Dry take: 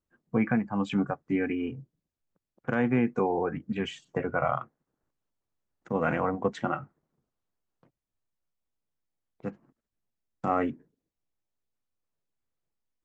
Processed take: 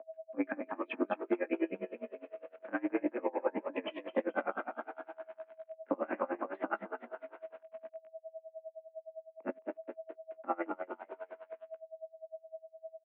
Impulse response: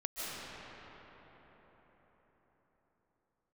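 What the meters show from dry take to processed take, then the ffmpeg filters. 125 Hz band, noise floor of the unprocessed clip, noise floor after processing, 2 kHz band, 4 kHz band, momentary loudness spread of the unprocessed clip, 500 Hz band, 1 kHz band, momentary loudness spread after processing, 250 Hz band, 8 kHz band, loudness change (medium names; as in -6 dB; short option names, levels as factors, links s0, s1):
under -25 dB, under -85 dBFS, -69 dBFS, -6.5 dB, -9.5 dB, 14 LU, -4.5 dB, -7.0 dB, 15 LU, -8.5 dB, no reading, -10.0 dB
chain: -filter_complex "[0:a]acompressor=threshold=0.02:ratio=20,asplit=2[s0][s1];[s1]asplit=7[s2][s3][s4][s5][s6][s7][s8];[s2]adelay=216,afreqshift=38,volume=0.447[s9];[s3]adelay=432,afreqshift=76,volume=0.251[s10];[s4]adelay=648,afreqshift=114,volume=0.14[s11];[s5]adelay=864,afreqshift=152,volume=0.0785[s12];[s6]adelay=1080,afreqshift=190,volume=0.0442[s13];[s7]adelay=1296,afreqshift=228,volume=0.0245[s14];[s8]adelay=1512,afreqshift=266,volume=0.0138[s15];[s9][s10][s11][s12][s13][s14][s15]amix=inputs=7:normalize=0[s16];[s0][s16]amix=inputs=2:normalize=0,aeval=exprs='val(0)*gte(abs(val(0)),0.00141)':c=same,aeval=exprs='val(0)+0.00355*sin(2*PI*580*n/s)':c=same,equalizer=f=480:t=o:w=0.26:g=3,highpass=f=170:t=q:w=0.5412,highpass=f=170:t=q:w=1.307,lowpass=f=2600:t=q:w=0.5176,lowpass=f=2600:t=q:w=0.7071,lowpass=f=2600:t=q:w=1.932,afreqshift=65,bandreject=f=410:w=12,flanger=delay=15:depth=5.8:speed=0.59,aeval=exprs='val(0)*pow(10,-27*(0.5-0.5*cos(2*PI*9.8*n/s))/20)':c=same,volume=3.76"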